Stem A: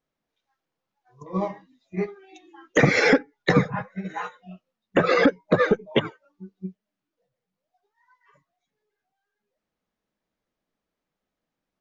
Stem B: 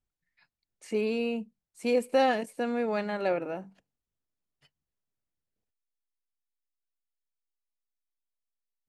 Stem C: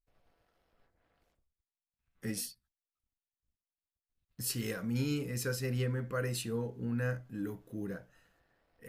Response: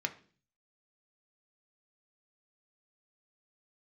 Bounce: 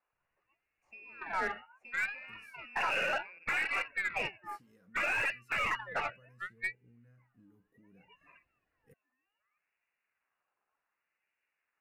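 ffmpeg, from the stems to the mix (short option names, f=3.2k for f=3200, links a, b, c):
-filter_complex "[0:a]asoftclip=type=tanh:threshold=-17.5dB,aeval=exprs='val(0)*sin(2*PI*1300*n/s+1300*0.45/0.66*sin(2*PI*0.66*n/s))':c=same,volume=2dB[a];[1:a]acompressor=threshold=-30dB:ratio=6,volume=-19.5dB,asplit=2[b][c];[c]volume=-17.5dB[d];[2:a]equalizer=f=140:w=0.42:g=8.5,acompressor=threshold=-37dB:ratio=6,flanger=delay=1.3:depth=3.1:regen=-59:speed=0.32:shape=triangular,adelay=50,volume=-11dB,afade=t=in:st=7.87:d=0.56:silence=0.398107[e];[a][b]amix=inputs=2:normalize=0,lowpass=f=2.5k:t=q:w=0.5098,lowpass=f=2.5k:t=q:w=0.6013,lowpass=f=2.5k:t=q:w=0.9,lowpass=f=2.5k:t=q:w=2.563,afreqshift=-2900,alimiter=limit=-24dB:level=0:latency=1:release=11,volume=0dB[f];[3:a]atrim=start_sample=2205[g];[d][g]afir=irnorm=-1:irlink=0[h];[e][f][h]amix=inputs=3:normalize=0,aeval=exprs='0.0668*(cos(1*acos(clip(val(0)/0.0668,-1,1)))-cos(1*PI/2))+0.00473*(cos(6*acos(clip(val(0)/0.0668,-1,1)))-cos(6*PI/2))+0.00168*(cos(8*acos(clip(val(0)/0.0668,-1,1)))-cos(8*PI/2))':c=same"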